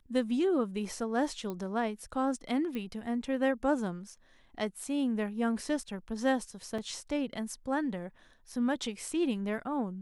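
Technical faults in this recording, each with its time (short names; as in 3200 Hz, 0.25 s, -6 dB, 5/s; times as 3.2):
1.5 pop -25 dBFS
2.75 pop -26 dBFS
6.78 gap 4.1 ms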